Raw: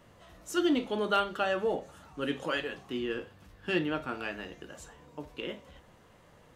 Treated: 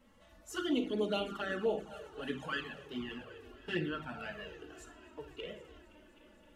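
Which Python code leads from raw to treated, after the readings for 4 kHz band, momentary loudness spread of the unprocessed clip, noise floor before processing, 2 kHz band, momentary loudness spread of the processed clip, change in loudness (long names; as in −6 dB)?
−5.0 dB, 19 LU, −59 dBFS, −5.5 dB, 18 LU, −6.0 dB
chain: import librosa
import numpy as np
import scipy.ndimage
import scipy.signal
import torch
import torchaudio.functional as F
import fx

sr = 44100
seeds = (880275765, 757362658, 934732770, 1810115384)

y = fx.spec_quant(x, sr, step_db=15)
y = fx.echo_heads(y, sr, ms=259, heads='all three', feedback_pct=59, wet_db=-22)
y = fx.room_shoebox(y, sr, seeds[0], volume_m3=3200.0, walls='furnished', distance_m=1.5)
y = fx.env_flanger(y, sr, rest_ms=3.9, full_db=-23.5)
y = y * librosa.db_to_amplitude(-3.5)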